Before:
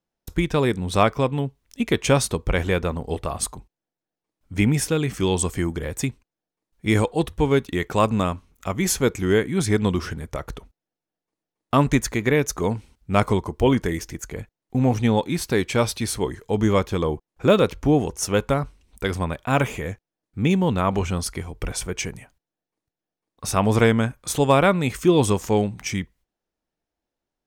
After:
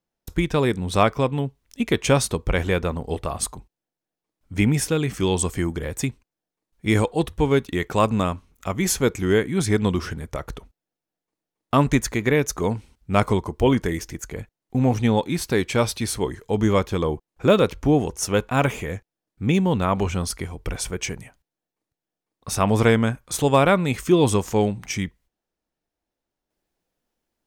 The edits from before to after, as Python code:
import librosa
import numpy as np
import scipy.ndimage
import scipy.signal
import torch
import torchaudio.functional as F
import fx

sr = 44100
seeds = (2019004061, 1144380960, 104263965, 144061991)

y = fx.edit(x, sr, fx.cut(start_s=18.49, length_s=0.96), tone=tone)